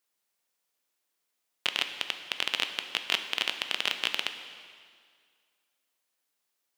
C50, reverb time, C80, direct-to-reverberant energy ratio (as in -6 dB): 8.5 dB, 2.0 s, 9.5 dB, 7.0 dB